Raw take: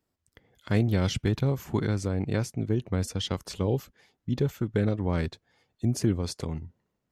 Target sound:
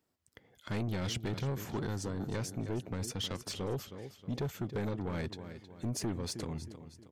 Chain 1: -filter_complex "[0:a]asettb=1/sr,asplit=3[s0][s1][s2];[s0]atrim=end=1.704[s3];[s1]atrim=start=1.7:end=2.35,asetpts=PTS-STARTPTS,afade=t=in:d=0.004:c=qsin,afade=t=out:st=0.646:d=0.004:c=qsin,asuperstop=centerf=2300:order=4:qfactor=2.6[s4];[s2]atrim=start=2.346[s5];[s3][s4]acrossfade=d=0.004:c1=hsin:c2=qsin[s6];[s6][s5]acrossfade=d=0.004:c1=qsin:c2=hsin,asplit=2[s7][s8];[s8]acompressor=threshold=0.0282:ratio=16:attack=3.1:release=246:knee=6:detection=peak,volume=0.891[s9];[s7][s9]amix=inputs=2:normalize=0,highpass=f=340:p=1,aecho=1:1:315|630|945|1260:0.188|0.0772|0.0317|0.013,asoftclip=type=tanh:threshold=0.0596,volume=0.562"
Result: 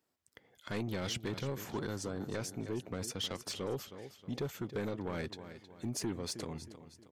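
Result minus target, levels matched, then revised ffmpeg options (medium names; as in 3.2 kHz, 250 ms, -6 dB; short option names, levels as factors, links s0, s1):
125 Hz band -3.5 dB
-filter_complex "[0:a]asettb=1/sr,asplit=3[s0][s1][s2];[s0]atrim=end=1.704[s3];[s1]atrim=start=1.7:end=2.35,asetpts=PTS-STARTPTS,afade=t=in:d=0.004:c=qsin,afade=t=out:st=0.646:d=0.004:c=qsin,asuperstop=centerf=2300:order=4:qfactor=2.6[s4];[s2]atrim=start=2.346[s5];[s3][s4]acrossfade=d=0.004:c1=hsin:c2=qsin[s6];[s6][s5]acrossfade=d=0.004:c1=qsin:c2=hsin,asplit=2[s7][s8];[s8]acompressor=threshold=0.0282:ratio=16:attack=3.1:release=246:knee=6:detection=peak,volume=0.891[s9];[s7][s9]amix=inputs=2:normalize=0,highpass=f=120:p=1,aecho=1:1:315|630|945|1260:0.188|0.0772|0.0317|0.013,asoftclip=type=tanh:threshold=0.0596,volume=0.562"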